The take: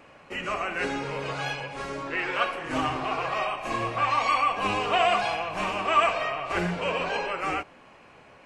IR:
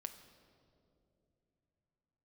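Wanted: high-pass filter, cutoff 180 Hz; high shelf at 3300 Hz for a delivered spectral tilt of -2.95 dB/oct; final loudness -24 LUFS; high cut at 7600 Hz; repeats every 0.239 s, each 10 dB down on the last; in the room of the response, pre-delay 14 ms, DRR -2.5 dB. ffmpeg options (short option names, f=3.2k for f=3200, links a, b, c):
-filter_complex "[0:a]highpass=180,lowpass=7.6k,highshelf=f=3.3k:g=6.5,aecho=1:1:239|478|717|956:0.316|0.101|0.0324|0.0104,asplit=2[a][b];[1:a]atrim=start_sample=2205,adelay=14[c];[b][c]afir=irnorm=-1:irlink=0,volume=6dB[d];[a][d]amix=inputs=2:normalize=0,volume=-2.5dB"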